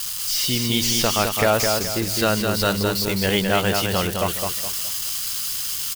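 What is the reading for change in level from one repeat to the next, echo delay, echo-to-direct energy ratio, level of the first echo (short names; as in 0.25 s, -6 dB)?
-9.0 dB, 0.21 s, -4.0 dB, -4.5 dB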